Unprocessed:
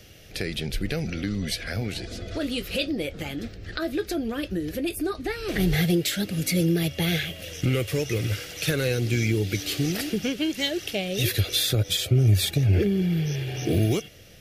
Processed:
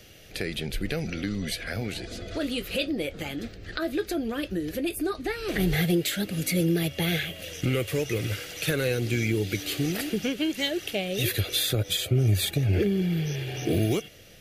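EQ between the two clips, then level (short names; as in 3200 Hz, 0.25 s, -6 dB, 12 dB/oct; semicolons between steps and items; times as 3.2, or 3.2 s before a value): notch 5400 Hz, Q 16; dynamic EQ 5300 Hz, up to -4 dB, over -40 dBFS, Q 1.1; bell 75 Hz -4.5 dB 2.5 oct; 0.0 dB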